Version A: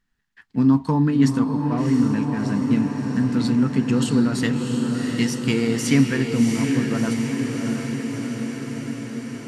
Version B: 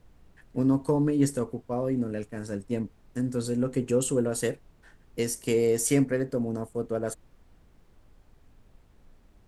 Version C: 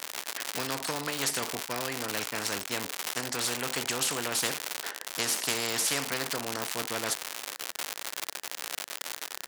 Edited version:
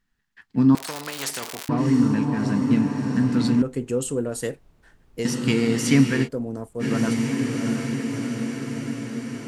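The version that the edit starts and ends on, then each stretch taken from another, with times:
A
0.75–1.69 s: from C
3.62–5.25 s: from B
6.26–6.82 s: from B, crossfade 0.06 s

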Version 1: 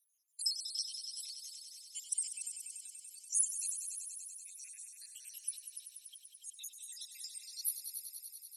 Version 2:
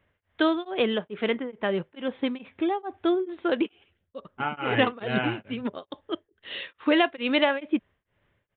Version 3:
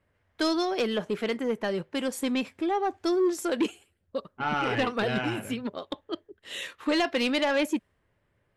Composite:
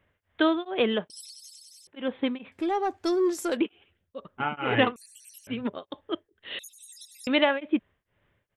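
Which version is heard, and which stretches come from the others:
2
1.10–1.87 s: from 1
2.52–3.57 s: from 3
4.96–5.47 s: from 1
6.59–7.27 s: from 1

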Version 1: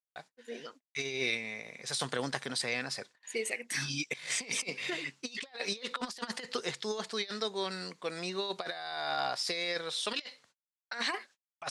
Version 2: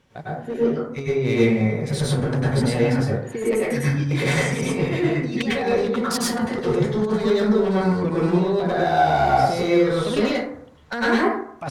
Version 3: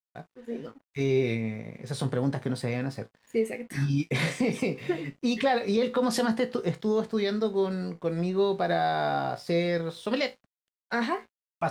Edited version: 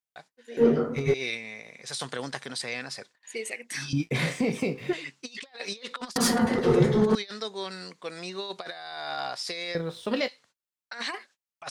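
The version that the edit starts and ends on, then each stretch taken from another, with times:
1
0.57–1.14 s: from 2
3.93–4.93 s: from 3
6.16–7.15 s: from 2
9.75–10.28 s: from 3

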